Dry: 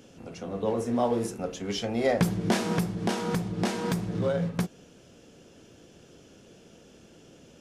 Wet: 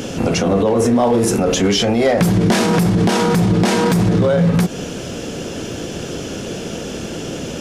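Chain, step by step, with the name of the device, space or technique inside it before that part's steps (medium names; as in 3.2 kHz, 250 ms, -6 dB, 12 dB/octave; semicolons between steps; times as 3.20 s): loud club master (compression 1.5:1, threshold -32 dBFS, peak gain reduction 5.5 dB; hard clipper -21.5 dBFS, distortion -23 dB; loudness maximiser +33.5 dB); trim -6.5 dB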